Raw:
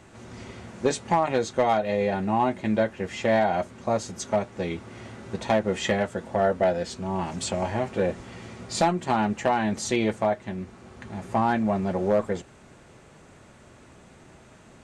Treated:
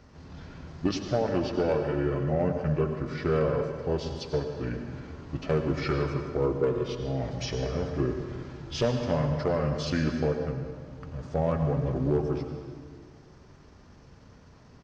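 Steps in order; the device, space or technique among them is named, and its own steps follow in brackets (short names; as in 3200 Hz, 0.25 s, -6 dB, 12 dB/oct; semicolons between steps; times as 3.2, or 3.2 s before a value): monster voice (pitch shift -6 st; low shelf 150 Hz +5.5 dB; reverb RT60 1.8 s, pre-delay 79 ms, DRR 5 dB); gain -5 dB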